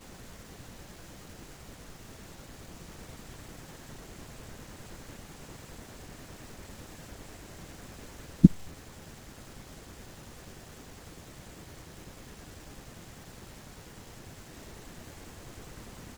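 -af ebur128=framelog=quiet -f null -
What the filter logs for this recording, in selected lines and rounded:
Integrated loudness:
  I:         -37.3 LUFS
  Threshold: -48.5 LUFS
Loudness range:
  LRA:        16.8 LU
  Threshold: -57.8 LUFS
  LRA low:   -48.5 LUFS
  LRA high:  -31.7 LUFS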